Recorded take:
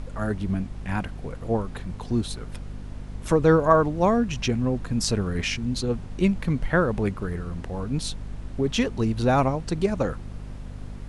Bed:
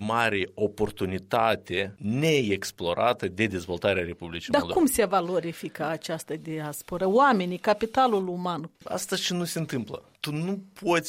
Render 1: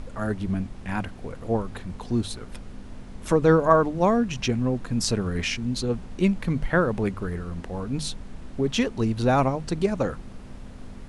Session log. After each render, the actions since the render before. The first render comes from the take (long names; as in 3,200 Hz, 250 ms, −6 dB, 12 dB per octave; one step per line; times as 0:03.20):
mains-hum notches 50/100/150 Hz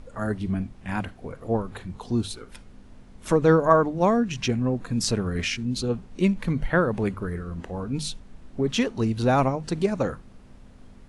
noise reduction from a noise print 8 dB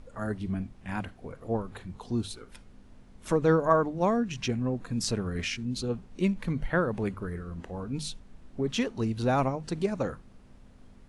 level −5 dB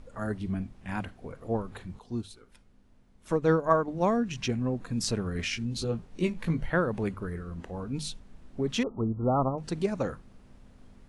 0:01.99–0:03.88: expander for the loud parts, over −36 dBFS
0:05.50–0:06.70: double-tracking delay 18 ms −5 dB
0:08.83–0:09.58: linear-phase brick-wall low-pass 1,400 Hz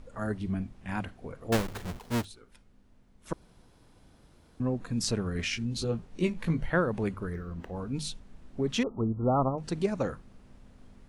0:01.52–0:02.25: each half-wave held at its own peak
0:03.33–0:04.60: fill with room tone
0:07.33–0:07.76: linearly interpolated sample-rate reduction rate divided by 3×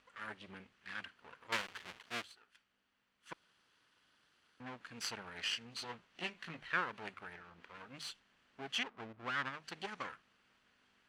lower of the sound and its delayed copy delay 0.66 ms
resonant band-pass 2,500 Hz, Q 1.1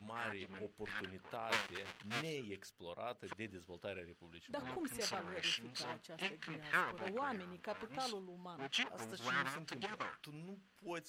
mix in bed −22 dB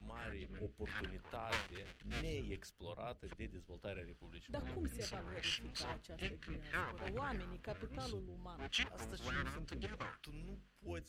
sub-octave generator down 2 octaves, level +4 dB
rotating-speaker cabinet horn 0.65 Hz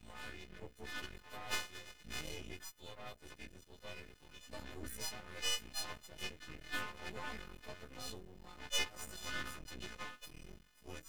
every partial snapped to a pitch grid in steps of 3 semitones
half-wave rectification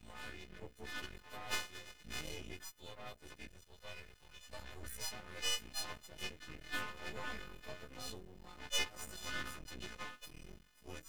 0:03.47–0:05.12: parametric band 270 Hz −10 dB 1.1 octaves
0:06.85–0:07.87: double-tracking delay 29 ms −8.5 dB